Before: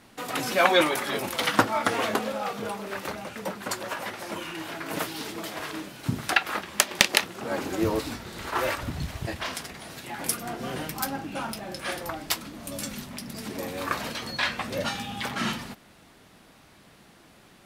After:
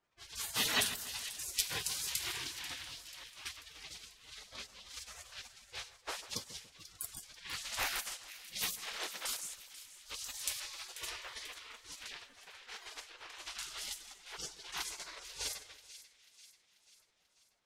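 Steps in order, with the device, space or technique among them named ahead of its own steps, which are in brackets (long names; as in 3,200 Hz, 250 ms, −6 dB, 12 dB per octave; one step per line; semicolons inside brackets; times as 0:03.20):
gate on every frequency bin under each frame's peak −25 dB weak
0:09.25–0:10.60: bass and treble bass +3 dB, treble +8 dB
cassette deck with a dynamic noise filter (white noise bed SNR 33 dB; low-pass that shuts in the quiet parts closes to 1,400 Hz, open at −39.5 dBFS)
echo with a time of its own for lows and highs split 1,900 Hz, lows 143 ms, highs 489 ms, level −14 dB
level +5 dB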